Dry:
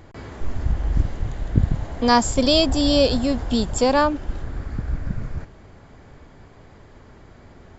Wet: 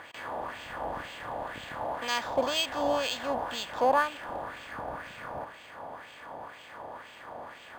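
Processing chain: per-bin compression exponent 0.6; LFO band-pass sine 2 Hz 750–2800 Hz; decimation joined by straight lines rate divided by 4×; gain -1 dB

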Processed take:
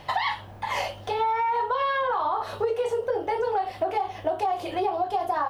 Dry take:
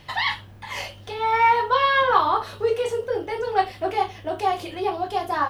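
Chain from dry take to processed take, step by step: bell 740 Hz +11 dB 1.4 oct; limiter -9 dBFS, peak gain reduction 10.5 dB; compressor, threshold -23 dBFS, peak gain reduction 10 dB

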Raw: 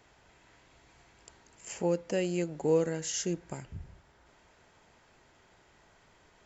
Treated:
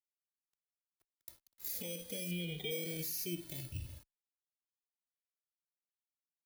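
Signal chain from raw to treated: FFT order left unsorted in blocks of 16 samples; expander -51 dBFS; EQ curve 480 Hz 0 dB, 1100 Hz -16 dB, 2400 Hz +9 dB; limiter -30 dBFS, peak gain reduction 19.5 dB; 2.31–2.71 resonant high shelf 4400 Hz -7.5 dB, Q 3; reverb RT60 0.35 s, pre-delay 7 ms, DRR 11 dB; sample gate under -55 dBFS; endless flanger 2.1 ms -0.41 Hz; gain +2.5 dB

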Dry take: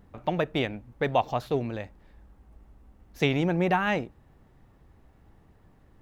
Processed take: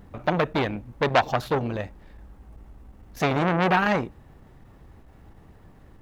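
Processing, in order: core saturation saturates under 1900 Hz; gain +8 dB

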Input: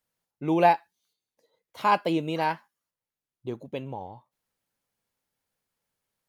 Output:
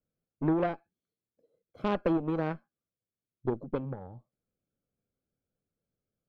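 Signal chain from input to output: running mean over 47 samples; compressor 16:1, threshold -30 dBFS, peak gain reduction 8.5 dB; added harmonics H 6 -17 dB, 7 -28 dB, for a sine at -23 dBFS; gain +6.5 dB

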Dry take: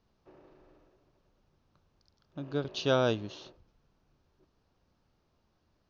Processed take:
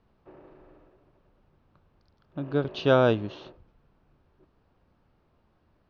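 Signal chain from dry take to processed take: LPF 2600 Hz 12 dB/oct; gain +6.5 dB

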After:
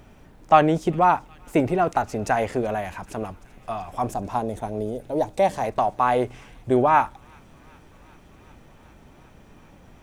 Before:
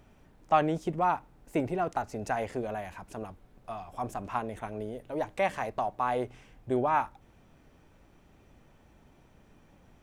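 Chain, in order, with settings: 4.14–5.64 band shelf 1800 Hz -10.5 dB; on a send: thin delay 0.384 s, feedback 83%, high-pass 2300 Hz, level -22 dB; on the sum: gain +9 dB

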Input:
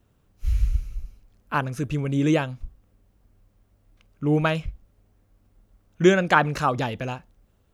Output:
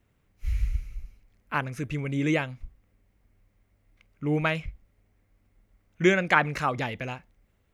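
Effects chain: bell 2100 Hz +11 dB 0.5 oct; gain -5 dB

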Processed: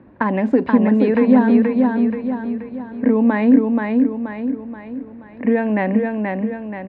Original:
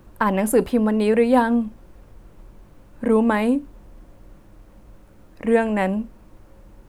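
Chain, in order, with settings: low-pass opened by the level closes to 2600 Hz, open at -12.5 dBFS; compressor, threshold -18 dBFS, peak gain reduction 7 dB; speaker cabinet 120–3600 Hz, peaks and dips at 260 Hz +10 dB, 1300 Hz -7 dB, 1800 Hz +4 dB, 3100 Hz -8 dB; feedback echo 0.479 s, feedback 47%, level -3.5 dB; gain +3 dB

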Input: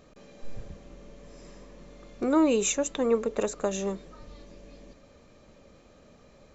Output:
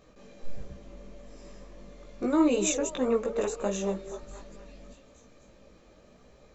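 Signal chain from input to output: delay with a stepping band-pass 0.238 s, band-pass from 470 Hz, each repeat 0.7 oct, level -8.5 dB; chorus voices 4, 1.4 Hz, delay 18 ms, depth 3 ms; gain +1.5 dB

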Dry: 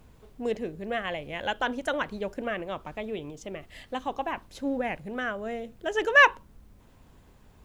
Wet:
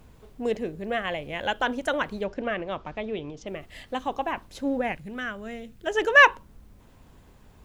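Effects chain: 2.24–3.47 LPF 5800 Hz 24 dB/oct; 4.92–5.87 bell 630 Hz -9.5 dB 1.8 oct; gain +2.5 dB

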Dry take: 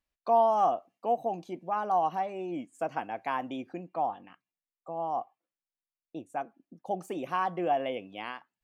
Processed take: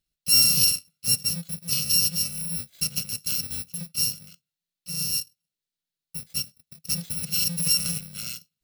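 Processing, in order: FFT order left unsorted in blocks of 128 samples; fifteen-band EQ 160 Hz +12 dB, 1000 Hz -10 dB, 4000 Hz +8 dB; gain +3.5 dB

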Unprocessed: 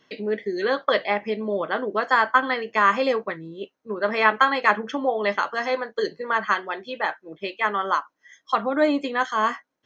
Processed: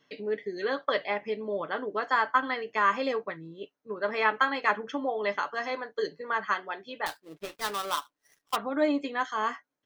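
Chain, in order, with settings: 7.06–8.56 switching dead time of 0.19 ms; comb 6.9 ms, depth 34%; gain -7 dB

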